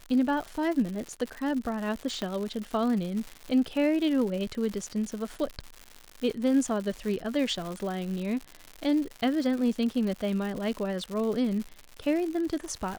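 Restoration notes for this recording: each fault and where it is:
surface crackle 190 per second −33 dBFS
0:02.22: click −18 dBFS

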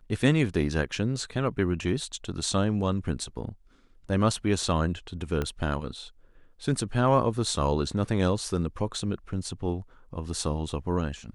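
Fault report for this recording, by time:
0:05.42: click −16 dBFS

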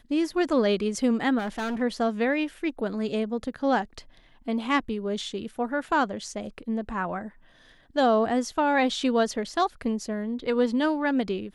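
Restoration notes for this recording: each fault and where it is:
0:01.38–0:01.82: clipping −27 dBFS

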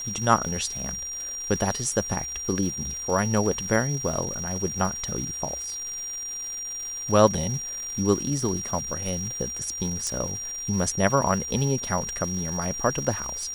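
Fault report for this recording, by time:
surface crackle 530 per second −34 dBFS
whistle 5,700 Hz −31 dBFS
0:10.07: click −15 dBFS

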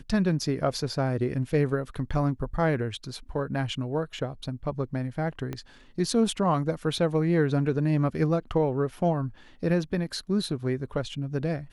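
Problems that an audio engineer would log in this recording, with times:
0:05.53: click −20 dBFS

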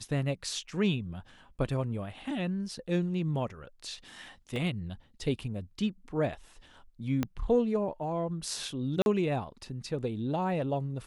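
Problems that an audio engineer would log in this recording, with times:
0:04.56: drop-out 2.1 ms
0:07.23: click −16 dBFS
0:09.02–0:09.06: drop-out 41 ms

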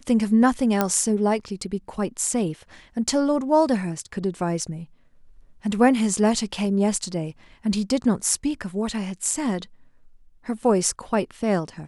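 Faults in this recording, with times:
0:00.81: click −6 dBFS

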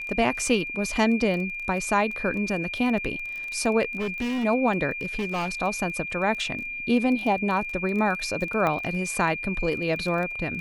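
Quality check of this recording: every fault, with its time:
surface crackle 18 per second −31 dBFS
whistle 2,400 Hz −31 dBFS
0:03.99–0:04.45: clipping −24.5 dBFS
0:05.01–0:05.49: clipping −23.5 dBFS
0:08.67: click −14 dBFS

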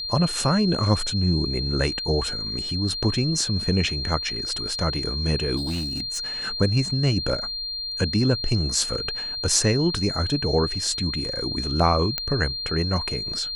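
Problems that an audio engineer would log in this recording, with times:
whistle 4,200 Hz −28 dBFS
0:05.56–0:06.27: clipping −23.5 dBFS
0:12.18: click −9 dBFS

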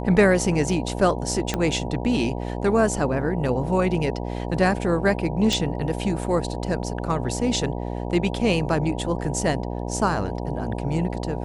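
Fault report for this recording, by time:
mains buzz 60 Hz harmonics 16 −29 dBFS
0:01.54: click −9 dBFS
0:05.53: click

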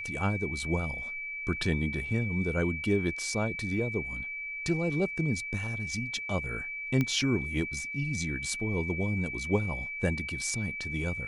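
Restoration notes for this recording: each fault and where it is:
whistle 2,300 Hz −35 dBFS
0:07.01: click −16 dBFS

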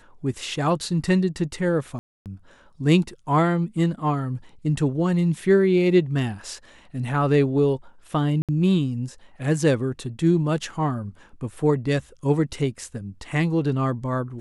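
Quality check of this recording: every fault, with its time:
0:01.99–0:02.26: drop-out 268 ms
0:08.42–0:08.49: drop-out 67 ms

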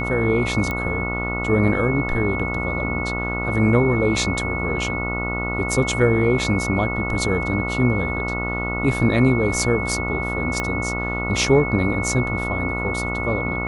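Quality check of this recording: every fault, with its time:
mains buzz 60 Hz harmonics 24 −27 dBFS
whistle 2,200 Hz −26 dBFS
0:00.71: click −12 dBFS
0:10.60: click −10 dBFS

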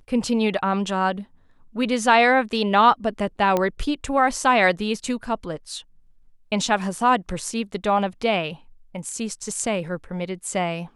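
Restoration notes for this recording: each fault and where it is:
0:03.57: click −9 dBFS

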